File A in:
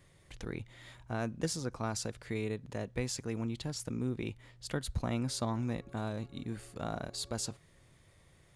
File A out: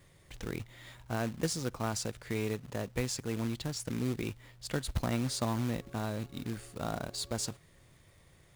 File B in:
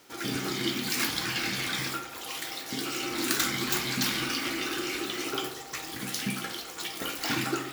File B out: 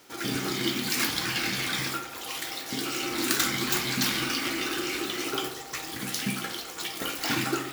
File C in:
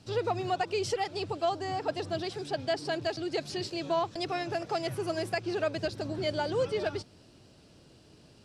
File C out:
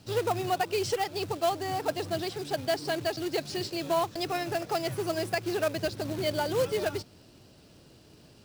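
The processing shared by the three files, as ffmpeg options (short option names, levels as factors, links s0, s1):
-af "acrusher=bits=3:mode=log:mix=0:aa=0.000001,volume=1.19"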